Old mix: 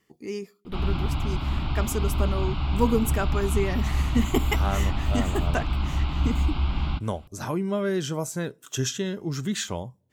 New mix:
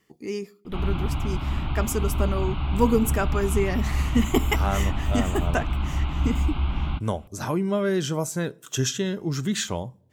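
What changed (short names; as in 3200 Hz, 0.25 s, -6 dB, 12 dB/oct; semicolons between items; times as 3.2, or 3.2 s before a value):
speech: send +9.5 dB; background: add LPF 3500 Hz 24 dB/oct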